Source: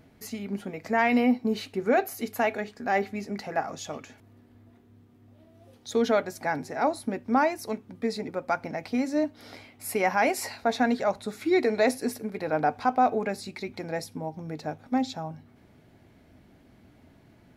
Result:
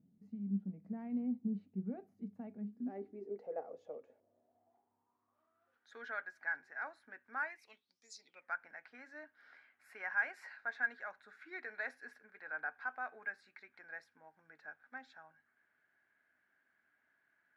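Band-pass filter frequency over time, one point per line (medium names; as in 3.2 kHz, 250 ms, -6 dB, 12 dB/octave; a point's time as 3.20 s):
band-pass filter, Q 9.5
2.60 s 190 Hz
3.46 s 490 Hz
4.02 s 490 Hz
5.90 s 1.6 kHz
7.47 s 1.6 kHz
8.10 s 7.3 kHz
8.49 s 1.6 kHz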